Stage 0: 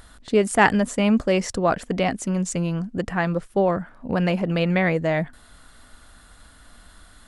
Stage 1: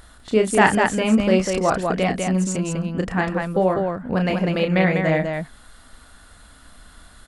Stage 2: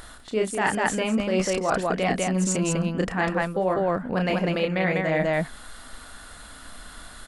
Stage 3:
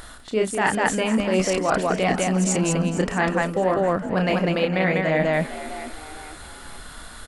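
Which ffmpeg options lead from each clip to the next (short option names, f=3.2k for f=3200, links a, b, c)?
-af "aecho=1:1:32.07|198.3:0.501|0.631"
-af "equalizer=f=67:w=0.37:g=-6.5,areverse,acompressor=threshold=-26dB:ratio=12,areverse,volume=6dB"
-filter_complex "[0:a]asplit=5[a][b][c][d][e];[b]adelay=456,afreqshift=73,volume=-14dB[f];[c]adelay=912,afreqshift=146,volume=-21.5dB[g];[d]adelay=1368,afreqshift=219,volume=-29.1dB[h];[e]adelay=1824,afreqshift=292,volume=-36.6dB[i];[a][f][g][h][i]amix=inputs=5:normalize=0,volume=2.5dB"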